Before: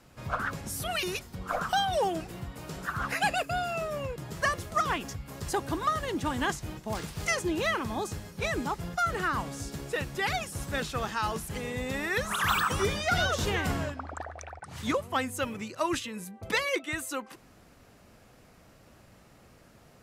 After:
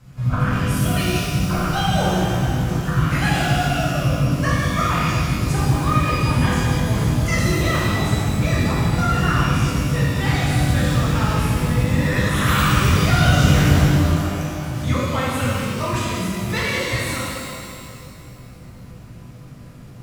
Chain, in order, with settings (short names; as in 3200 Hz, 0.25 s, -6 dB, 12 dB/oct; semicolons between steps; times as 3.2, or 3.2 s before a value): resonant low shelf 220 Hz +11.5 dB, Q 1.5; shimmer reverb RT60 2.3 s, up +12 st, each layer -8 dB, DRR -7.5 dB; gain -1 dB